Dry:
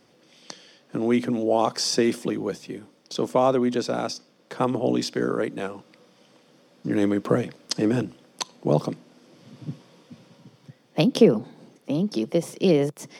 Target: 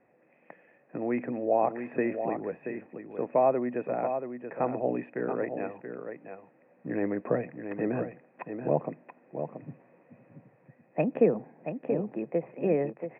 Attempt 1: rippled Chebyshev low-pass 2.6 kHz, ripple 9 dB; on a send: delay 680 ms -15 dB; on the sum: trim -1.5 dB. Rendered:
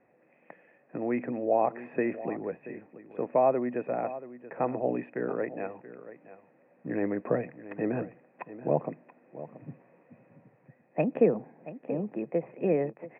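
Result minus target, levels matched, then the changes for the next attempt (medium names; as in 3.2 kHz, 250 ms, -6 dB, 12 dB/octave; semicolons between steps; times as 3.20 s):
echo-to-direct -7 dB
change: delay 680 ms -8 dB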